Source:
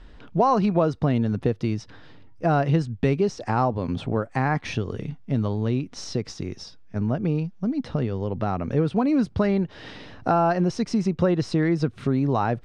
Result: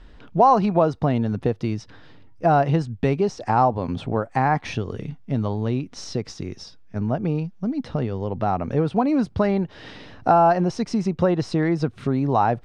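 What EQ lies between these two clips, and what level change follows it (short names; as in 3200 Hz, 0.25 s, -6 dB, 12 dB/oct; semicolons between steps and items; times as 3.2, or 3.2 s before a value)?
dynamic EQ 800 Hz, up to +7 dB, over -38 dBFS, Q 1.7; 0.0 dB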